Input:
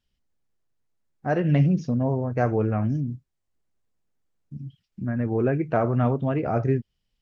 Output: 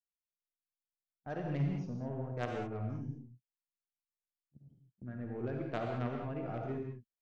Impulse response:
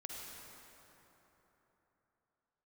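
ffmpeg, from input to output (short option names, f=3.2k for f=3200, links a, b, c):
-filter_complex "[0:a]agate=range=-24dB:threshold=-34dB:ratio=16:detection=peak,aeval=exprs='0.398*(cos(1*acos(clip(val(0)/0.398,-1,1)))-cos(1*PI/2))+0.0501*(cos(3*acos(clip(val(0)/0.398,-1,1)))-cos(3*PI/2))+0.0224*(cos(4*acos(clip(val(0)/0.398,-1,1)))-cos(4*PI/2))+0.0562*(cos(6*acos(clip(val(0)/0.398,-1,1)))-cos(6*PI/2))+0.0355*(cos(8*acos(clip(val(0)/0.398,-1,1)))-cos(8*PI/2))':c=same[a];[1:a]atrim=start_sample=2205,afade=t=out:st=0.27:d=0.01,atrim=end_sample=12348[b];[a][b]afir=irnorm=-1:irlink=0,volume=-7.5dB"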